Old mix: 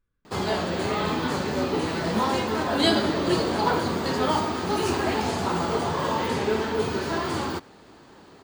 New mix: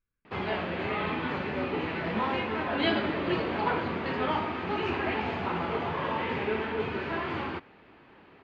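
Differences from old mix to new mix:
background +3.5 dB; master: add ladder low-pass 2900 Hz, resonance 50%

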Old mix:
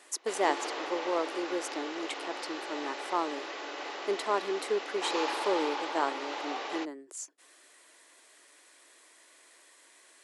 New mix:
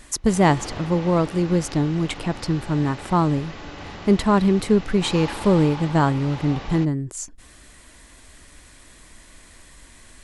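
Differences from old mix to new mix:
speech +8.5 dB; master: remove steep high-pass 340 Hz 36 dB/oct

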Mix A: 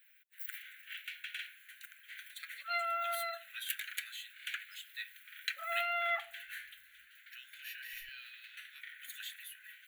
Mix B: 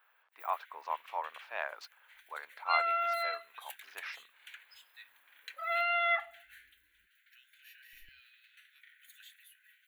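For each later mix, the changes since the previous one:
speech: unmuted; first sound -10.5 dB; second sound +4.5 dB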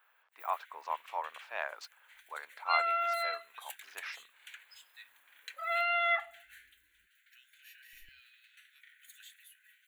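master: add bell 7600 Hz +7 dB 0.75 oct

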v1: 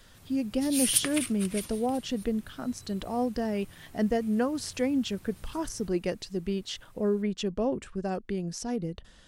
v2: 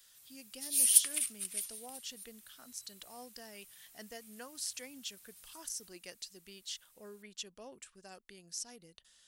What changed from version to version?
master: add pre-emphasis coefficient 0.97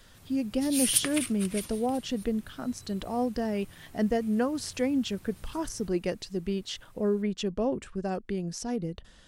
master: remove pre-emphasis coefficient 0.97

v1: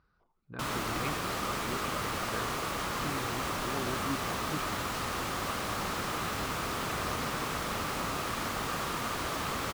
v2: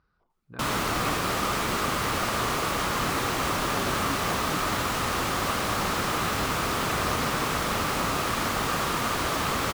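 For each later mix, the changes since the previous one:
background +7.0 dB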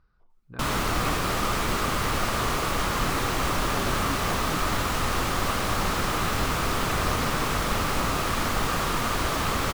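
master: remove HPF 110 Hz 6 dB/oct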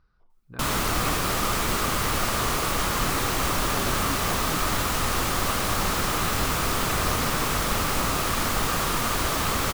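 master: add high shelf 5900 Hz +7.5 dB

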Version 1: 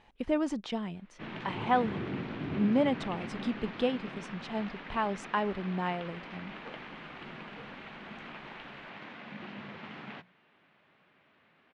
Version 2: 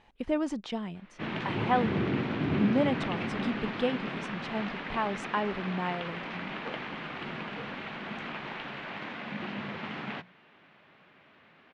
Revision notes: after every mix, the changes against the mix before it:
background +7.0 dB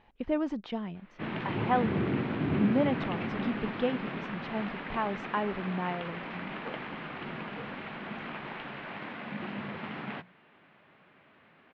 master: add air absorption 210 m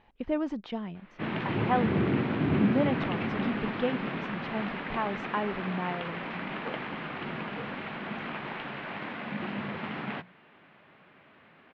background +3.0 dB

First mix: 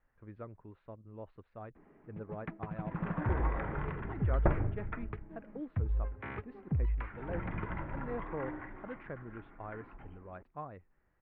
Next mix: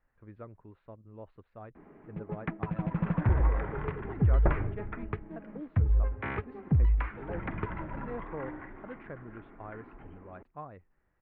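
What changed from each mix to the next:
first sound +7.5 dB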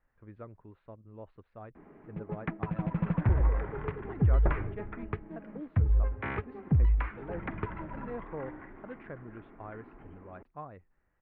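second sound -3.5 dB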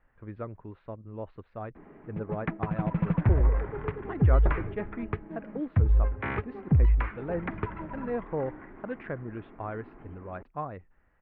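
speech +8.5 dB; first sound +3.0 dB

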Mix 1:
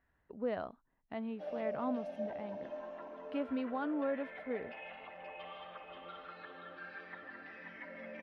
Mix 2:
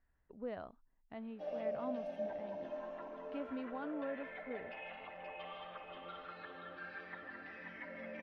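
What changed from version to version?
speech -7.0 dB; master: remove HPF 110 Hz 6 dB/oct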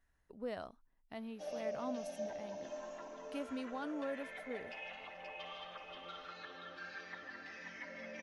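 background -3.0 dB; master: remove air absorption 410 m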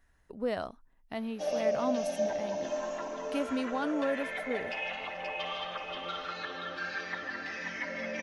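speech +9.5 dB; background +11.5 dB

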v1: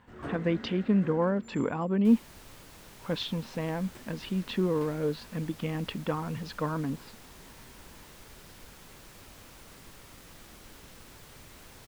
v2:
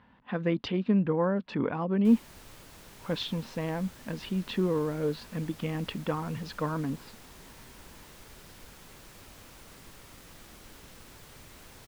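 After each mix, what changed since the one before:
first sound: muted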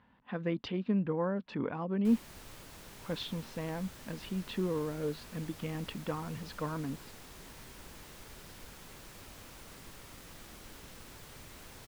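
speech -5.5 dB

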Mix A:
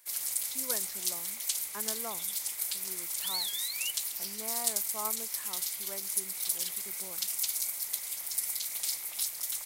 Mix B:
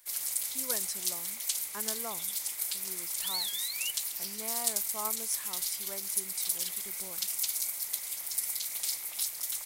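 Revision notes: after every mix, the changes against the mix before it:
speech: remove BPF 140–2600 Hz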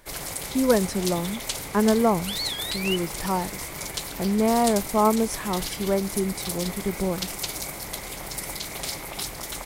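second sound: entry -0.95 s; master: remove pre-emphasis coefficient 0.97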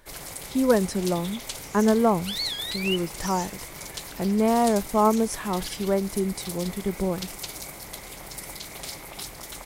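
first sound -5.0 dB; second sound: remove steep low-pass 4900 Hz

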